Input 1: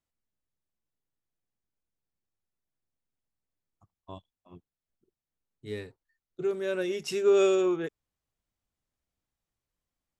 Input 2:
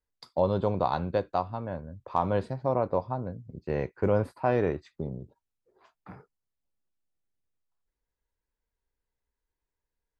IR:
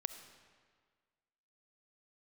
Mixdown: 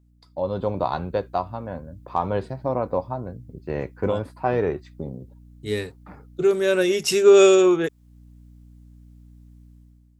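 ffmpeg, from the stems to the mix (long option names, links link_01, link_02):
-filter_complex "[0:a]highshelf=frequency=4900:gain=7,volume=-0.5dB,asplit=2[link_01][link_02];[1:a]flanger=delay=2.1:depth=2:regen=70:speed=0.87:shape=triangular,aeval=exprs='val(0)+0.00224*(sin(2*PI*60*n/s)+sin(2*PI*2*60*n/s)/2+sin(2*PI*3*60*n/s)/3+sin(2*PI*4*60*n/s)/4+sin(2*PI*5*60*n/s)/5)':channel_layout=same,volume=-4dB[link_03];[link_02]apad=whole_len=449529[link_04];[link_03][link_04]sidechaincompress=threshold=-41dB:ratio=8:attack=16:release=361[link_05];[link_01][link_05]amix=inputs=2:normalize=0,dynaudnorm=framelen=200:gausssize=5:maxgain=11dB"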